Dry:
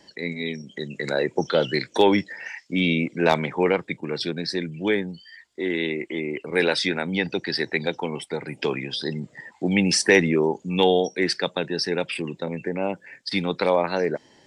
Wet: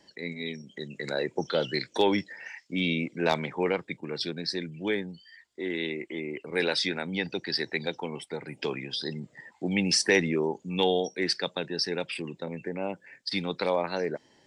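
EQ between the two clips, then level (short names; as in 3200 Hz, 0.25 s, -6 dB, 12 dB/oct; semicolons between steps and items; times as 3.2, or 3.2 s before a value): dynamic EQ 4700 Hz, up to +5 dB, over -39 dBFS, Q 1.4; -6.5 dB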